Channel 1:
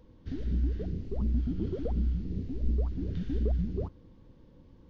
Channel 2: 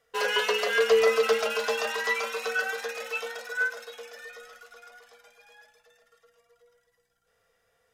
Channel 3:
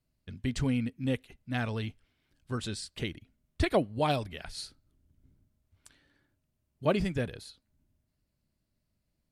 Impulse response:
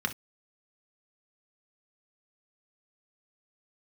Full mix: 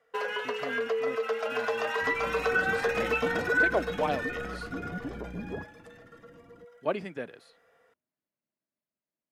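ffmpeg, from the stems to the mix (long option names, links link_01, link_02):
-filter_complex "[0:a]equalizer=frequency=110:width=1.5:gain=5.5,asoftclip=type=tanh:threshold=-29.5dB,adelay=1750,volume=-5.5dB[link_01];[1:a]acompressor=threshold=-32dB:ratio=4,volume=2.5dB[link_02];[2:a]highpass=frequency=410:poles=1,volume=-7dB[link_03];[link_01][link_02][link_03]amix=inputs=3:normalize=0,acrossover=split=160 2500:gain=0.158 1 0.224[link_04][link_05][link_06];[link_04][link_05][link_06]amix=inputs=3:normalize=0,dynaudnorm=framelen=330:gausssize=13:maxgain=8dB"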